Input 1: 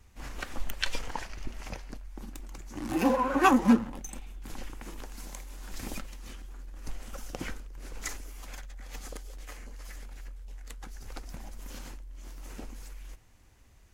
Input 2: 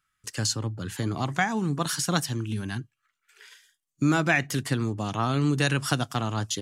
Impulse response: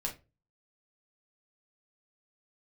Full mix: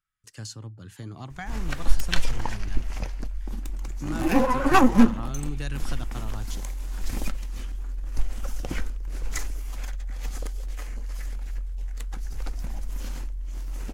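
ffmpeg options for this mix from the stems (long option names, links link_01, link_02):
-filter_complex "[0:a]aeval=exprs='0.355*(cos(1*acos(clip(val(0)/0.355,-1,1)))-cos(1*PI/2))+0.0282*(cos(6*acos(clip(val(0)/0.355,-1,1)))-cos(6*PI/2))':channel_layout=same,adelay=1300,volume=3dB[link_01];[1:a]asoftclip=type=tanh:threshold=-10dB,volume=-12.5dB[link_02];[link_01][link_02]amix=inputs=2:normalize=0,lowshelf=frequency=89:gain=11"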